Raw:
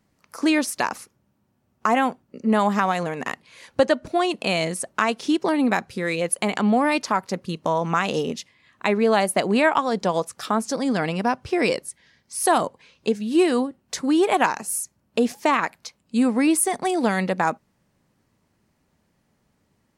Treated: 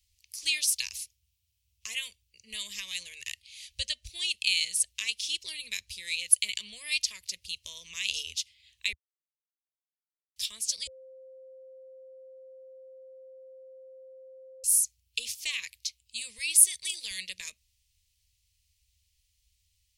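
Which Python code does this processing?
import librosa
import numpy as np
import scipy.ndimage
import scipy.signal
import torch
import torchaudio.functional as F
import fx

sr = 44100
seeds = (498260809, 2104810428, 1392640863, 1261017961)

y = fx.low_shelf(x, sr, hz=440.0, db=-6.5, at=(16.38, 17.11))
y = fx.edit(y, sr, fx.silence(start_s=8.93, length_s=1.43),
    fx.bleep(start_s=10.87, length_s=3.77, hz=524.0, db=-10.5), tone=tone)
y = scipy.signal.sosfilt(scipy.signal.cheby2(4, 40, [140.0, 1500.0], 'bandstop', fs=sr, output='sos'), y)
y = F.gain(torch.from_numpy(y), 4.0).numpy()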